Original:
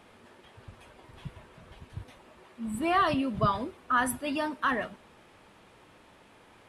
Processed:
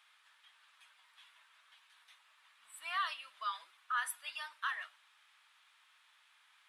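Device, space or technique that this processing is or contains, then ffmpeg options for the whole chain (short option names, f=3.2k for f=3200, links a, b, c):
headphones lying on a table: -af "highpass=f=1.2k:w=0.5412,highpass=f=1.2k:w=1.3066,equalizer=f=3.6k:t=o:w=0.44:g=5,volume=-7dB"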